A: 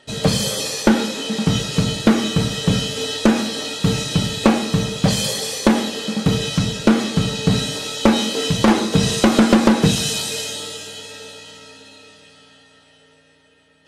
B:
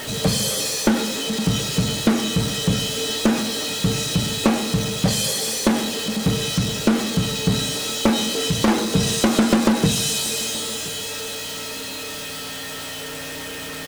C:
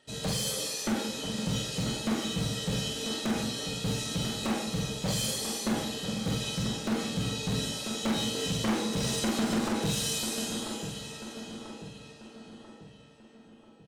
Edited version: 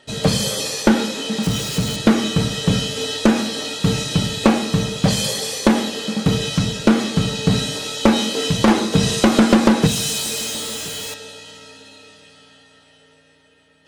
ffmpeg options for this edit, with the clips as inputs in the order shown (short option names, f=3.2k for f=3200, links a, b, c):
-filter_complex "[1:a]asplit=2[a][b];[0:a]asplit=3[c][d][e];[c]atrim=end=1.432[f];[a]atrim=start=1.428:end=1.962[g];[d]atrim=start=1.958:end=9.872[h];[b]atrim=start=9.868:end=11.142[i];[e]atrim=start=11.138[j];[f][g]acrossfade=d=0.004:c1=hsin:c2=hsin[k];[k][h]acrossfade=d=0.004:c1=hsin:c2=hsin[l];[l][i]acrossfade=d=0.004:c1=hsin:c2=hsin[m];[m][j]acrossfade=d=0.004:c1=hsin:c2=hsin"